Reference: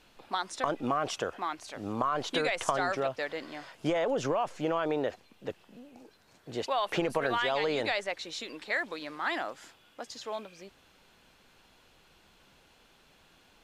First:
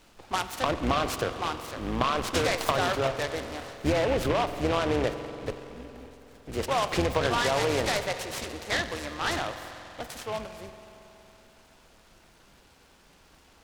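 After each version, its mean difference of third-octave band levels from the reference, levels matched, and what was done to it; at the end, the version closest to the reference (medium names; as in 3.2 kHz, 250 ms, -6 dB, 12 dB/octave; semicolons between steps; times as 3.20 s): 7.0 dB: octave divider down 2 oct, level -1 dB; spring tank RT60 3.4 s, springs 46 ms, chirp 25 ms, DRR 9 dB; delay time shaken by noise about 1.7 kHz, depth 0.07 ms; trim +3 dB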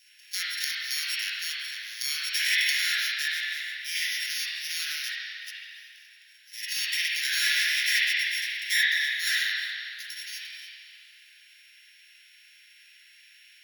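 19.5 dB: sorted samples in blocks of 8 samples; steep high-pass 1.7 kHz 72 dB/octave; spring tank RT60 2.3 s, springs 36/55 ms, chirp 45 ms, DRR -10 dB; trim +4.5 dB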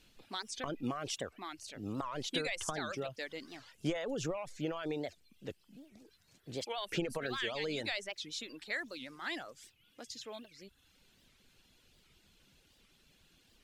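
4.5 dB: reverb removal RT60 0.64 s; peaking EQ 890 Hz -13 dB 2.1 oct; warped record 78 rpm, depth 250 cents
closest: third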